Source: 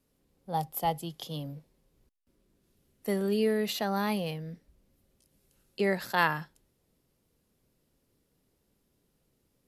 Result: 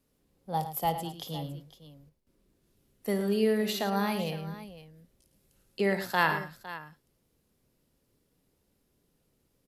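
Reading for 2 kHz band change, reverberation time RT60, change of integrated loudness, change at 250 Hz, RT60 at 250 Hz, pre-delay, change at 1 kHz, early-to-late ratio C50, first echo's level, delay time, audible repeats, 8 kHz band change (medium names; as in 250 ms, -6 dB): +1.0 dB, no reverb, +0.5 dB, +1.0 dB, no reverb, no reverb, +0.5 dB, no reverb, -13.5 dB, 55 ms, 3, +0.5 dB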